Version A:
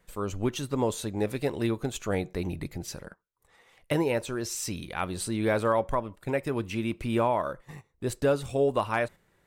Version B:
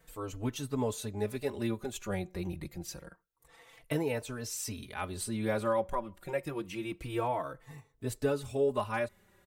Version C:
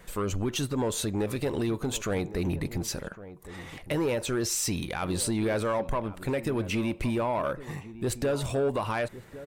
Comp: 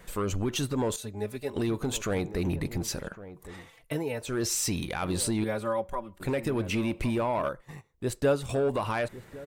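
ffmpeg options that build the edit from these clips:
-filter_complex "[1:a]asplit=3[s0][s1][s2];[2:a]asplit=5[s3][s4][s5][s6][s7];[s3]atrim=end=0.962[s8];[s0]atrim=start=0.958:end=1.562[s9];[s4]atrim=start=1.558:end=3.73[s10];[s1]atrim=start=3.49:end=4.41[s11];[s5]atrim=start=4.17:end=5.442[s12];[s2]atrim=start=5.438:end=6.202[s13];[s6]atrim=start=6.198:end=7.492[s14];[0:a]atrim=start=7.488:end=8.492[s15];[s7]atrim=start=8.488[s16];[s8][s9]acrossfade=d=0.004:c1=hsin:c2=hsin[s17];[s17][s10]acrossfade=d=0.004:c1=hsin:c2=hsin[s18];[s18][s11]acrossfade=d=0.24:c1=tri:c2=tri[s19];[s19][s12]acrossfade=d=0.24:c1=tri:c2=tri[s20];[s20][s13]acrossfade=d=0.004:c1=hsin:c2=hsin[s21];[s21][s14]acrossfade=d=0.004:c1=hsin:c2=hsin[s22];[s22][s15]acrossfade=d=0.004:c1=hsin:c2=hsin[s23];[s23][s16]acrossfade=d=0.004:c1=hsin:c2=hsin"

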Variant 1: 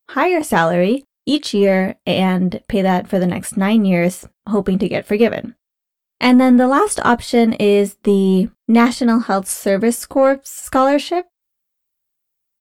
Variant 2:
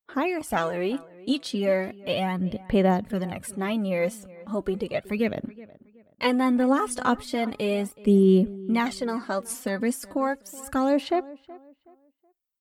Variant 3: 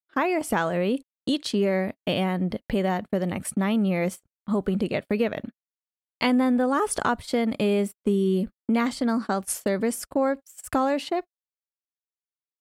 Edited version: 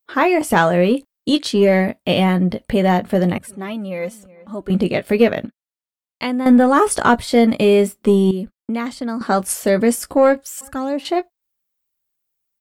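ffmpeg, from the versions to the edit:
-filter_complex "[1:a]asplit=2[s0][s1];[2:a]asplit=2[s2][s3];[0:a]asplit=5[s4][s5][s6][s7][s8];[s4]atrim=end=3.382[s9];[s0]atrim=start=3.378:end=4.702[s10];[s5]atrim=start=4.698:end=5.472[s11];[s2]atrim=start=5.468:end=6.462[s12];[s6]atrim=start=6.458:end=8.312[s13];[s3]atrim=start=8.308:end=9.212[s14];[s7]atrim=start=9.208:end=10.612[s15];[s1]atrim=start=10.608:end=11.052[s16];[s8]atrim=start=11.048[s17];[s9][s10]acrossfade=d=0.004:c1=hsin:c2=hsin[s18];[s18][s11]acrossfade=d=0.004:c1=hsin:c2=hsin[s19];[s19][s12]acrossfade=d=0.004:c1=hsin:c2=hsin[s20];[s20][s13]acrossfade=d=0.004:c1=hsin:c2=hsin[s21];[s21][s14]acrossfade=d=0.004:c1=hsin:c2=hsin[s22];[s22][s15]acrossfade=d=0.004:c1=hsin:c2=hsin[s23];[s23][s16]acrossfade=d=0.004:c1=hsin:c2=hsin[s24];[s24][s17]acrossfade=d=0.004:c1=hsin:c2=hsin"

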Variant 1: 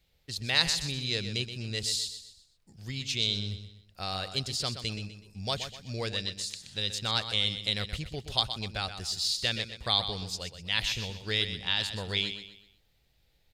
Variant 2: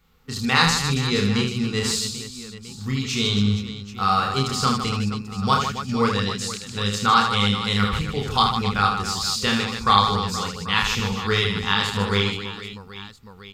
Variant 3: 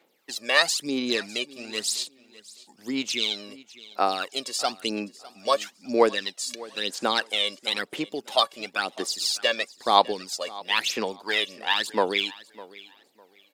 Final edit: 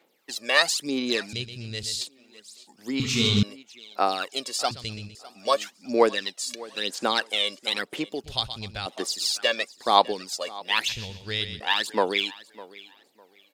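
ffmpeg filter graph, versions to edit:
-filter_complex "[0:a]asplit=4[s0][s1][s2][s3];[2:a]asplit=6[s4][s5][s6][s7][s8][s9];[s4]atrim=end=1.332[s10];[s0]atrim=start=1.328:end=2.012[s11];[s5]atrim=start=2.008:end=3.002[s12];[1:a]atrim=start=2.998:end=3.432[s13];[s6]atrim=start=3.428:end=4.712[s14];[s1]atrim=start=4.708:end=5.152[s15];[s7]atrim=start=5.148:end=8.242[s16];[s2]atrim=start=8.238:end=8.862[s17];[s8]atrim=start=8.858:end=10.892[s18];[s3]atrim=start=10.888:end=11.602[s19];[s9]atrim=start=11.598[s20];[s10][s11]acrossfade=d=0.004:c1=hsin:c2=hsin[s21];[s21][s12]acrossfade=d=0.004:c1=hsin:c2=hsin[s22];[s22][s13]acrossfade=d=0.004:c1=hsin:c2=hsin[s23];[s23][s14]acrossfade=d=0.004:c1=hsin:c2=hsin[s24];[s24][s15]acrossfade=d=0.004:c1=hsin:c2=hsin[s25];[s25][s16]acrossfade=d=0.004:c1=hsin:c2=hsin[s26];[s26][s17]acrossfade=d=0.004:c1=hsin:c2=hsin[s27];[s27][s18]acrossfade=d=0.004:c1=hsin:c2=hsin[s28];[s28][s19]acrossfade=d=0.004:c1=hsin:c2=hsin[s29];[s29][s20]acrossfade=d=0.004:c1=hsin:c2=hsin"

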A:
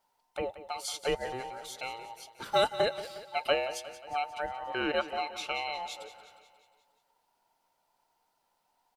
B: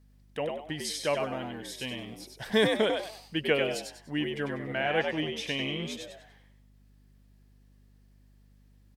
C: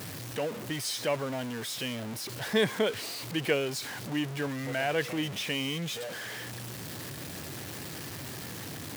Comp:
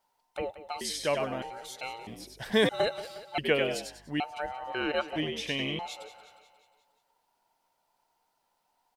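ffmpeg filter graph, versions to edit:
-filter_complex "[1:a]asplit=4[s0][s1][s2][s3];[0:a]asplit=5[s4][s5][s6][s7][s8];[s4]atrim=end=0.812[s9];[s0]atrim=start=0.808:end=1.422[s10];[s5]atrim=start=1.418:end=2.072[s11];[s1]atrim=start=2.068:end=2.692[s12];[s6]atrim=start=2.688:end=3.382[s13];[s2]atrim=start=3.378:end=4.202[s14];[s7]atrim=start=4.198:end=5.162[s15];[s3]atrim=start=5.158:end=5.792[s16];[s8]atrim=start=5.788[s17];[s9][s10]acrossfade=d=0.004:c1=hsin:c2=hsin[s18];[s18][s11]acrossfade=d=0.004:c1=hsin:c2=hsin[s19];[s19][s12]acrossfade=d=0.004:c1=hsin:c2=hsin[s20];[s20][s13]acrossfade=d=0.004:c1=hsin:c2=hsin[s21];[s21][s14]acrossfade=d=0.004:c1=hsin:c2=hsin[s22];[s22][s15]acrossfade=d=0.004:c1=hsin:c2=hsin[s23];[s23][s16]acrossfade=d=0.004:c1=hsin:c2=hsin[s24];[s24][s17]acrossfade=d=0.004:c1=hsin:c2=hsin"

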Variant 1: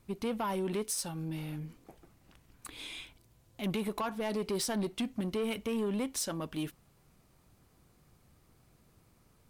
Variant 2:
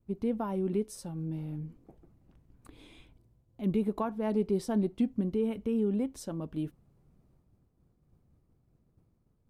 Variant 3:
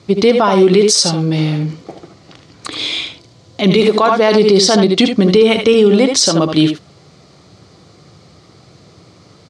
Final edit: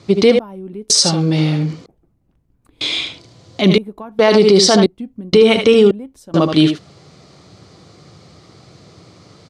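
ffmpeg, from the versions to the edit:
-filter_complex "[1:a]asplit=5[s0][s1][s2][s3][s4];[2:a]asplit=6[s5][s6][s7][s8][s9][s10];[s5]atrim=end=0.392[s11];[s0]atrim=start=0.388:end=0.902[s12];[s6]atrim=start=0.898:end=1.862[s13];[s1]atrim=start=1.858:end=2.812[s14];[s7]atrim=start=2.808:end=3.782[s15];[s2]atrim=start=3.778:end=4.192[s16];[s8]atrim=start=4.188:end=4.862[s17];[s3]atrim=start=4.858:end=5.332[s18];[s9]atrim=start=5.328:end=5.912[s19];[s4]atrim=start=5.908:end=6.342[s20];[s10]atrim=start=6.338[s21];[s11][s12]acrossfade=d=0.004:c1=hsin:c2=hsin[s22];[s22][s13]acrossfade=d=0.004:c1=hsin:c2=hsin[s23];[s23][s14]acrossfade=d=0.004:c1=hsin:c2=hsin[s24];[s24][s15]acrossfade=d=0.004:c1=hsin:c2=hsin[s25];[s25][s16]acrossfade=d=0.004:c1=hsin:c2=hsin[s26];[s26][s17]acrossfade=d=0.004:c1=hsin:c2=hsin[s27];[s27][s18]acrossfade=d=0.004:c1=hsin:c2=hsin[s28];[s28][s19]acrossfade=d=0.004:c1=hsin:c2=hsin[s29];[s29][s20]acrossfade=d=0.004:c1=hsin:c2=hsin[s30];[s30][s21]acrossfade=d=0.004:c1=hsin:c2=hsin"

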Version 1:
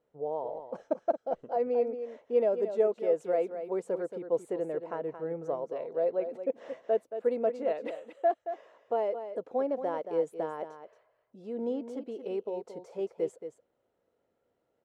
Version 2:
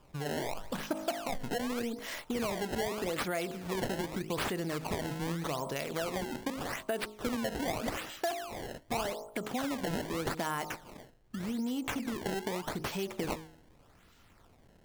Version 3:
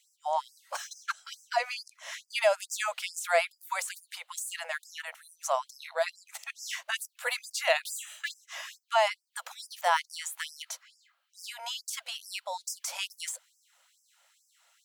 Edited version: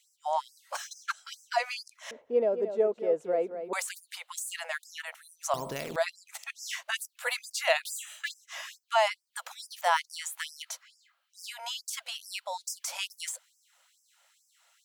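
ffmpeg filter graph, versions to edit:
-filter_complex "[2:a]asplit=3[s0][s1][s2];[s0]atrim=end=2.112[s3];[0:a]atrim=start=2.108:end=3.732[s4];[s1]atrim=start=3.728:end=5.542[s5];[1:a]atrim=start=5.538:end=5.962[s6];[s2]atrim=start=5.958[s7];[s3][s4]acrossfade=d=0.004:c1=hsin:c2=hsin[s8];[s8][s5]acrossfade=d=0.004:c1=hsin:c2=hsin[s9];[s9][s6]acrossfade=d=0.004:c1=hsin:c2=hsin[s10];[s10][s7]acrossfade=d=0.004:c1=hsin:c2=hsin"

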